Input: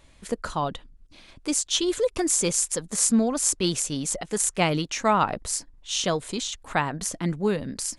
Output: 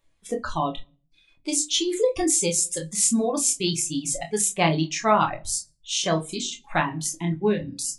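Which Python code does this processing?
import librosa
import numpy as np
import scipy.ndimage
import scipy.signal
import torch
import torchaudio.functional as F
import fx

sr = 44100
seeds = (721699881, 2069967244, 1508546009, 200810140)

y = fx.noise_reduce_blind(x, sr, reduce_db=17)
y = fx.room_shoebox(y, sr, seeds[0], volume_m3=33.0, walls='mixed', distance_m=0.34)
y = fx.dereverb_blind(y, sr, rt60_s=0.67)
y = fx.hum_notches(y, sr, base_hz=50, count=6)
y = fx.room_early_taps(y, sr, ms=(25, 43), db=(-7.0, -17.0))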